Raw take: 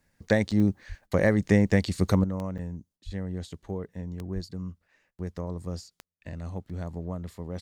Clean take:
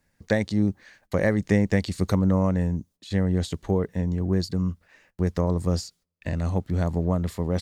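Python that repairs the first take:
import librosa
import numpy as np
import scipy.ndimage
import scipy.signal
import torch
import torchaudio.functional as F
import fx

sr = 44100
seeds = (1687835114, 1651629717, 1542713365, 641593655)

y = fx.fix_declick_ar(x, sr, threshold=10.0)
y = fx.highpass(y, sr, hz=140.0, slope=24, at=(0.88, 1.0), fade=0.02)
y = fx.highpass(y, sr, hz=140.0, slope=24, at=(3.05, 3.17), fade=0.02)
y = fx.highpass(y, sr, hz=140.0, slope=24, at=(4.34, 4.46), fade=0.02)
y = fx.fix_interpolate(y, sr, at_s=(0.51, 2.58, 6.69), length_ms=6.1)
y = fx.gain(y, sr, db=fx.steps((0.0, 0.0), (2.24, 10.5)))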